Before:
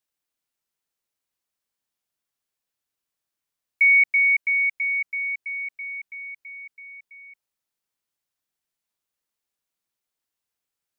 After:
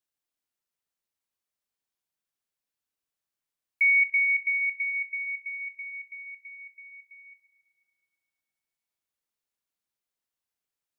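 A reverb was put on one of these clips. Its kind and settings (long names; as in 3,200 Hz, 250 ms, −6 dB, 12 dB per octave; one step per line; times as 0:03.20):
spring reverb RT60 2.3 s, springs 39/46/56 ms, chirp 25 ms, DRR 9 dB
level −5 dB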